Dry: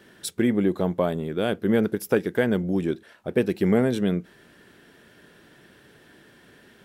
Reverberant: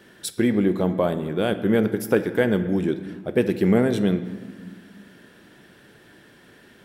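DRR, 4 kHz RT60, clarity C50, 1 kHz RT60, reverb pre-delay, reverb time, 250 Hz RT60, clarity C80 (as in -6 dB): 10.0 dB, 1.1 s, 12.0 dB, 1.6 s, 4 ms, 1.7 s, 2.5 s, 13.0 dB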